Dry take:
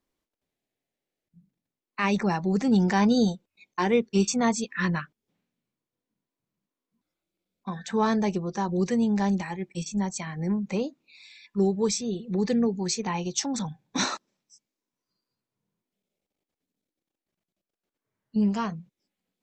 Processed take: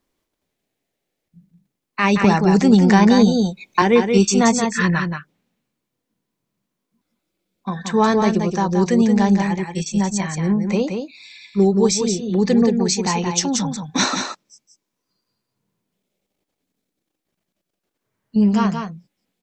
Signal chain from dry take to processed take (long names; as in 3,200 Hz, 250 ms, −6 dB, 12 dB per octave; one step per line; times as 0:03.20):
single-tap delay 176 ms −6 dB
0:02.24–0:03.82: multiband upward and downward compressor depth 70%
level +8 dB